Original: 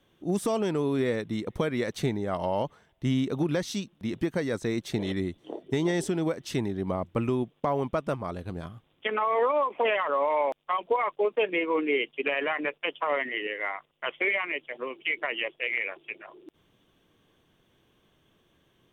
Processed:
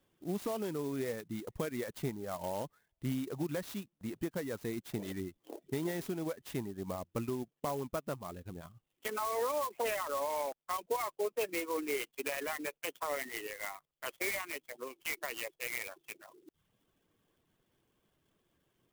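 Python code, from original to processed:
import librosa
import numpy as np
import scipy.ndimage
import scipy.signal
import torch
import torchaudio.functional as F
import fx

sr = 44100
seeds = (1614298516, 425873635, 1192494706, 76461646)

y = fx.dereverb_blind(x, sr, rt60_s=0.57)
y = fx.clock_jitter(y, sr, seeds[0], jitter_ms=0.048)
y = y * 10.0 ** (-8.5 / 20.0)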